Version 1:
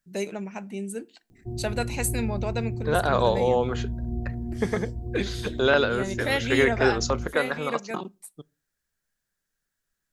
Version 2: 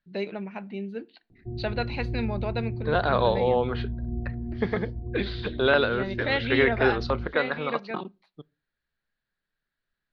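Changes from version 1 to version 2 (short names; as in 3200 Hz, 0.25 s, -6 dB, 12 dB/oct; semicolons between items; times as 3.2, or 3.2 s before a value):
background: add Bessel low-pass 670 Hz; master: add elliptic low-pass 4300 Hz, stop band 50 dB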